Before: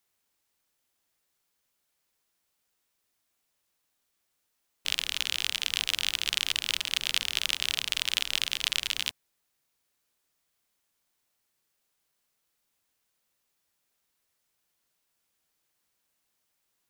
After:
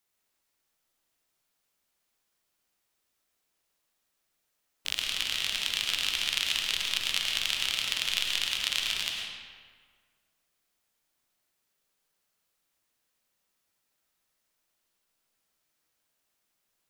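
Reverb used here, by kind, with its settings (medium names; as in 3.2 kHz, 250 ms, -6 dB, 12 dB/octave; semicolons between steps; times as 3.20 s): algorithmic reverb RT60 1.7 s, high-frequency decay 0.7×, pre-delay 65 ms, DRR 0 dB; trim -2.5 dB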